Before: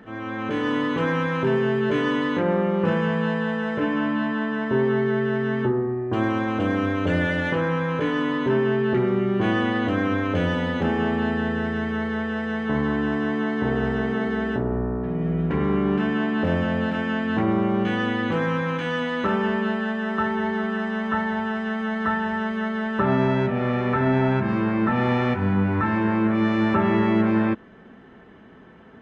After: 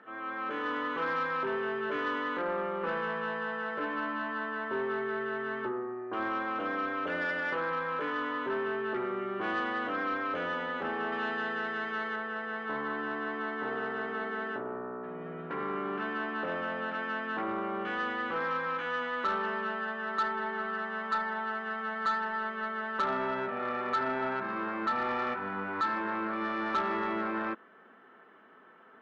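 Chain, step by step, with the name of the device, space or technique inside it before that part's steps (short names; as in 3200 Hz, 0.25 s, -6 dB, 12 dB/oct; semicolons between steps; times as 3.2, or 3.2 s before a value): intercom (BPF 390–3700 Hz; bell 1300 Hz +9 dB 0.58 oct; soft clip -15 dBFS, distortion -19 dB); 11.12–12.16 high shelf 2800 Hz +10 dB; gain -8 dB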